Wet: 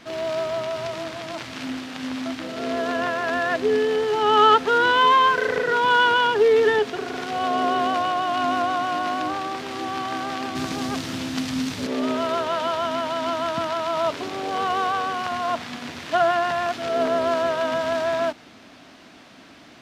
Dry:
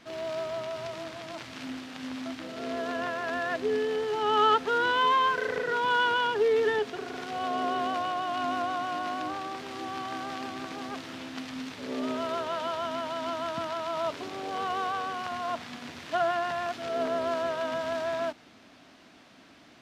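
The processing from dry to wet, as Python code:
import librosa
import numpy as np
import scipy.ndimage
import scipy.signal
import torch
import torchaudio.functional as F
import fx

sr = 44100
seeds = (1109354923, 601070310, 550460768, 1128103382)

y = fx.bass_treble(x, sr, bass_db=10, treble_db=8, at=(10.55, 11.87))
y = y * librosa.db_to_amplitude(7.5)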